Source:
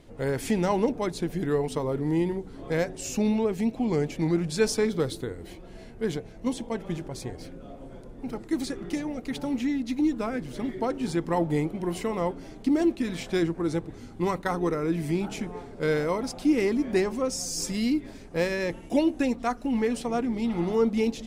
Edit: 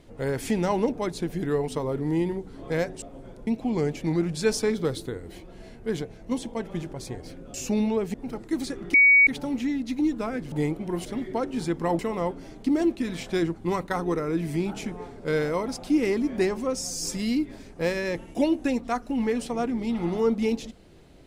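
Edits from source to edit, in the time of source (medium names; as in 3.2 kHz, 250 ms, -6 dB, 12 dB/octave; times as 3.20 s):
3.02–3.62 s: swap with 7.69–8.14 s
8.94–9.27 s: bleep 2.25 kHz -12.5 dBFS
11.46–11.99 s: move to 10.52 s
13.56–14.11 s: delete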